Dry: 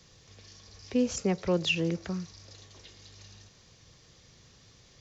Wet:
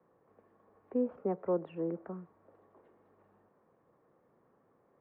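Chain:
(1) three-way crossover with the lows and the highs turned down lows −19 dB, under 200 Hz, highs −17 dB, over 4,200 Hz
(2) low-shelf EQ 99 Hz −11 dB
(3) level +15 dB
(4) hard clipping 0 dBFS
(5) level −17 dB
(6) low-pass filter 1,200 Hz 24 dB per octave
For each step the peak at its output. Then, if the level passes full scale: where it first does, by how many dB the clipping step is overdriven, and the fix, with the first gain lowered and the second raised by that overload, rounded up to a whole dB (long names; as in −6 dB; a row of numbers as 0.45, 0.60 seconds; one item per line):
−17.5, −17.5, −2.5, −2.5, −19.5, −21.5 dBFS
no step passes full scale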